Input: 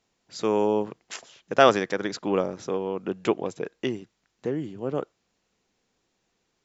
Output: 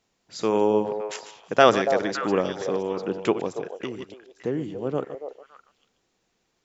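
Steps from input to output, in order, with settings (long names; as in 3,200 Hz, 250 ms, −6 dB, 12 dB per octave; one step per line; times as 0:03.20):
delay that plays each chunk backwards 101 ms, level −12 dB
0:03.48–0:03.99: downward compressor, threshold −30 dBFS, peak gain reduction 8 dB
echo through a band-pass that steps 283 ms, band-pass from 610 Hz, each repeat 1.4 octaves, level −6 dB
level +1 dB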